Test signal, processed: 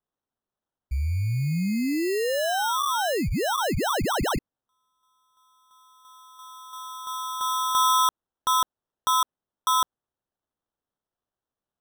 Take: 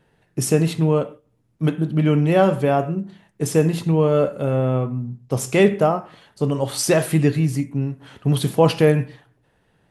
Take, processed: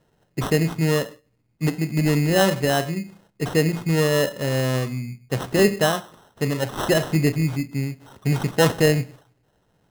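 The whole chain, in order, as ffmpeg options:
-af "acrusher=samples=19:mix=1:aa=0.000001,volume=-2.5dB"

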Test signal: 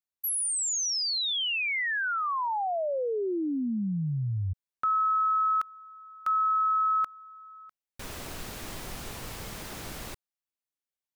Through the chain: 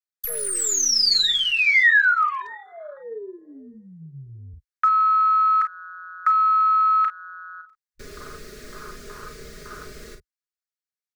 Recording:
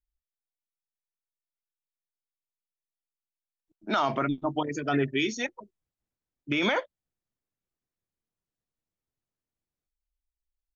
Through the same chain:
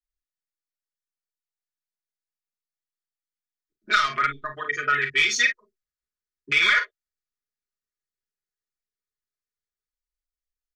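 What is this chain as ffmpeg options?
-filter_complex "[0:a]acrossover=split=100|710[a][b][c];[b]acompressor=threshold=-39dB:ratio=20:attack=9.6:release=904:knee=6:detection=peak[d];[a][d][c]amix=inputs=3:normalize=0,highshelf=f=5.9k:g=11.5,afwtdn=0.0112,asplit=2[e][f];[f]aecho=0:1:37|50:0.376|0.266[g];[e][g]amix=inputs=2:normalize=0,aeval=exprs='clip(val(0),-1,0.0794)':c=same,aecho=1:1:4.8:0.8,acrossover=split=130|600|1800[h][i][j][k];[h]acompressor=threshold=-48dB:ratio=4[l];[i]acompressor=threshold=-43dB:ratio=4[m];[j]acompressor=threshold=-35dB:ratio=4[n];[k]acompressor=threshold=-24dB:ratio=4[o];[l][m][n][o]amix=inputs=4:normalize=0,firequalizer=gain_entry='entry(110,0);entry(200,-12);entry(290,-4);entry(430,0);entry(820,-19);entry(1200,5);entry(1800,7);entry(2900,-3);entry(4400,3);entry(11000,-10)':delay=0.05:min_phase=1,volume=6dB"

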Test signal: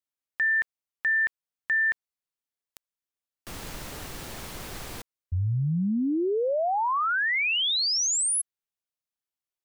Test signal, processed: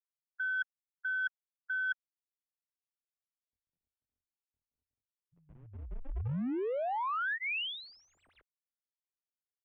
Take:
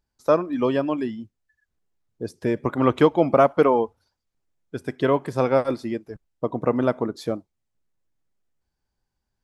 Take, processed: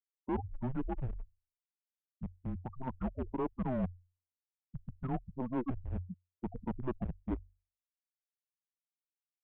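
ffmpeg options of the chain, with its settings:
-af "bandreject=f=2.2k:w=5.8,afftfilt=real='re*gte(hypot(re,im),0.158)':imag='im*gte(hypot(re,im),0.158)':win_size=1024:overlap=0.75,highpass=94,bandreject=f=50:t=h:w=6,bandreject=f=100:t=h:w=6,bandreject=f=150:t=h:w=6,bandreject=f=200:t=h:w=6,bandreject=f=250:t=h:w=6,bandreject=f=300:t=h:w=6,bandreject=f=350:t=h:w=6,areverse,acompressor=threshold=-30dB:ratio=12:attack=67:release=661:knee=1:detection=rms,areverse,aeval=exprs='clip(val(0),-1,0.0299)':c=same,highpass=f=240:t=q:w=0.5412,highpass=f=240:t=q:w=1.307,lowpass=f=3.3k:t=q:w=0.5176,lowpass=f=3.3k:t=q:w=0.7071,lowpass=f=3.3k:t=q:w=1.932,afreqshift=-260,volume=-1.5dB"

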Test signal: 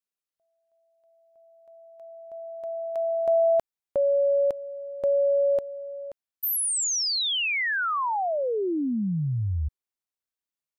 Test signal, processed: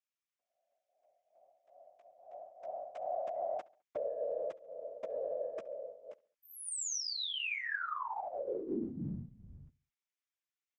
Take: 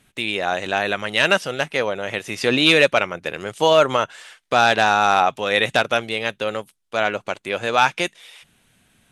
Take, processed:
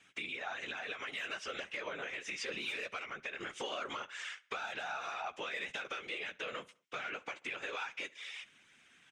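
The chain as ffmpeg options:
-filter_complex "[0:a]highpass=230,equalizer=f=230:t=q:w=4:g=3,equalizer=f=620:t=q:w=4:g=-8,equalizer=f=890:t=q:w=4:g=-5,equalizer=f=2.2k:t=q:w=4:g=4,equalizer=f=4.3k:t=q:w=4:g=-8,lowpass=f=6.9k:w=0.5412,lowpass=f=6.9k:w=1.3066,acontrast=57,lowshelf=f=490:g=-11,alimiter=limit=-12.5dB:level=0:latency=1:release=74,flanger=delay=8.1:depth=8:regen=6:speed=0.24:shape=triangular,acompressor=threshold=-30dB:ratio=16:attack=3.6:release=431:knee=1:detection=peak,afftfilt=real='hypot(re,im)*cos(2*PI*random(0))':imag='hypot(re,im)*sin(2*PI*random(1))':win_size=512:overlap=0.75,asplit=2[a][b];[b]adelay=69,lowpass=f=4.3k:p=1,volume=-22dB,asplit=2[c][d];[d]adelay=69,lowpass=f=4.3k:p=1,volume=0.46,asplit=2[e][f];[f]adelay=69,lowpass=f=4.3k:p=1,volume=0.46[g];[a][c][e][g]amix=inputs=4:normalize=0,volume=2dB"

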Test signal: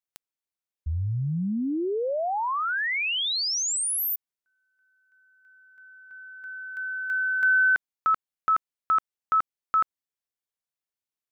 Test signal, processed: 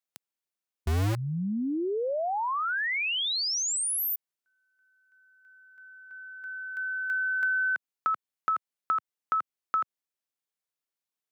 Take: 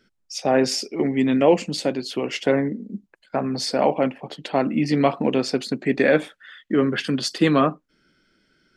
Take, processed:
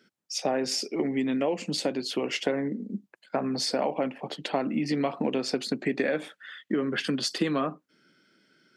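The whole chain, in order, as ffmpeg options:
-filter_complex "[0:a]acrossover=split=120[a][b];[a]acrusher=bits=4:mix=0:aa=0.000001[c];[b]acompressor=threshold=-27dB:ratio=6:attack=65:release=147:knee=6:detection=rms[d];[c][d]amix=inputs=2:normalize=0"

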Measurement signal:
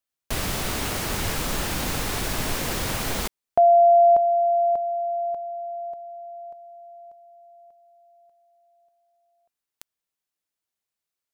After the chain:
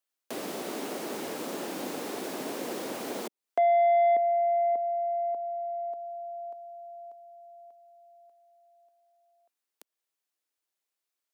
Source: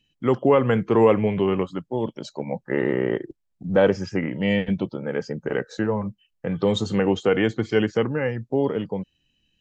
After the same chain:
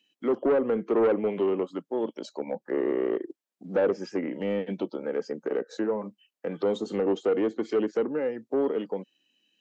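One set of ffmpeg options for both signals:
-filter_complex "[0:a]highpass=f=260:w=0.5412,highpass=f=260:w=1.3066,acrossover=split=690[a][b];[b]acompressor=threshold=-38dB:ratio=6:attack=2.2:release=205:knee=6:detection=rms[c];[a][c]amix=inputs=2:normalize=0,asoftclip=type=tanh:threshold=-17.5dB"

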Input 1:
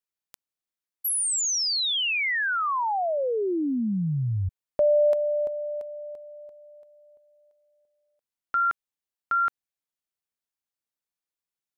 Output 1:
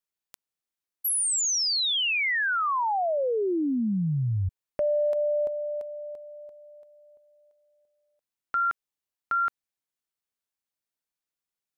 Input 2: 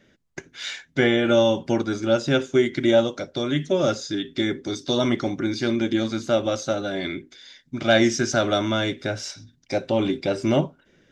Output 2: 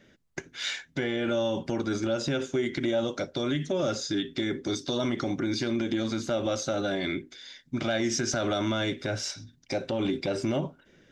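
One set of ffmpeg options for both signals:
-af "acompressor=threshold=-22dB:ratio=6:attack=0.63:release=131:knee=1:detection=peak"

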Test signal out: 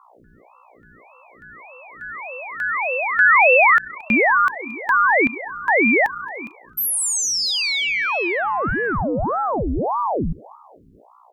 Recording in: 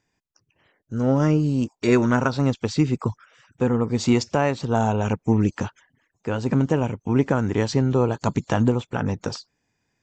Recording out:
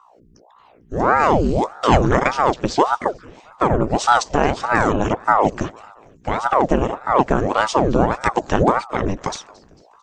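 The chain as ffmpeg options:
-filter_complex "[0:a]aeval=exprs='val(0)+0.002*(sin(2*PI*60*n/s)+sin(2*PI*2*60*n/s)/2+sin(2*PI*3*60*n/s)/3+sin(2*PI*4*60*n/s)/4+sin(2*PI*5*60*n/s)/5)':c=same,asplit=4[a][b][c][d];[b]adelay=224,afreqshift=30,volume=-23dB[e];[c]adelay=448,afreqshift=60,volume=-28.8dB[f];[d]adelay=672,afreqshift=90,volume=-34.7dB[g];[a][e][f][g]amix=inputs=4:normalize=0,aeval=exprs='val(0)*sin(2*PI*590*n/s+590*0.85/1.7*sin(2*PI*1.7*n/s))':c=same,volume=6.5dB"

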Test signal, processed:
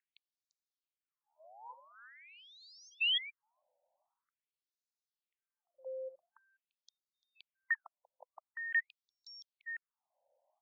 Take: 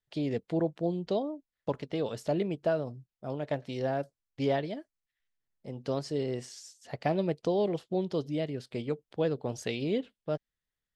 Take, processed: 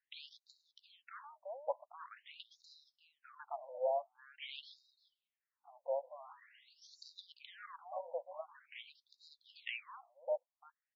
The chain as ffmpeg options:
-filter_complex "[0:a]equalizer=f=330:w=5.7:g=7,acrossover=split=270|510|2400[a][b][c][d];[b]acompressor=mode=upward:threshold=-38dB:ratio=2.5[e];[a][e][c][d]amix=inputs=4:normalize=0,asplit=2[f][g];[g]adelay=344,volume=-13dB,highshelf=f=4k:g=-7.74[h];[f][h]amix=inputs=2:normalize=0,asoftclip=type=tanh:threshold=-22.5dB,afftfilt=real='re*between(b*sr/1024,690*pow(5300/690,0.5+0.5*sin(2*PI*0.46*pts/sr))/1.41,690*pow(5300/690,0.5+0.5*sin(2*PI*0.46*pts/sr))*1.41)':imag='im*between(b*sr/1024,690*pow(5300/690,0.5+0.5*sin(2*PI*0.46*pts/sr))/1.41,690*pow(5300/690,0.5+0.5*sin(2*PI*0.46*pts/sr))*1.41)':win_size=1024:overlap=0.75"

